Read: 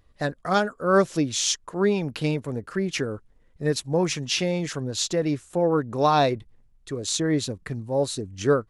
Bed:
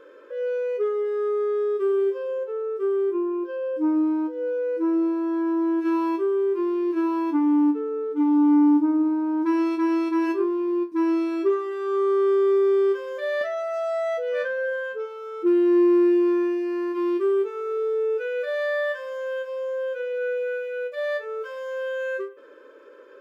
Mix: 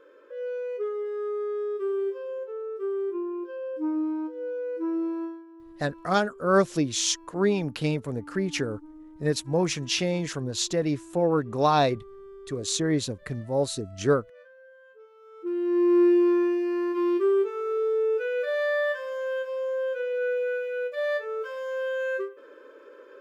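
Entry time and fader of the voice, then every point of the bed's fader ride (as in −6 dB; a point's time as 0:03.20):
5.60 s, −1.5 dB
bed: 0:05.24 −6 dB
0:05.46 −25.5 dB
0:14.76 −25.5 dB
0:16.01 −0.5 dB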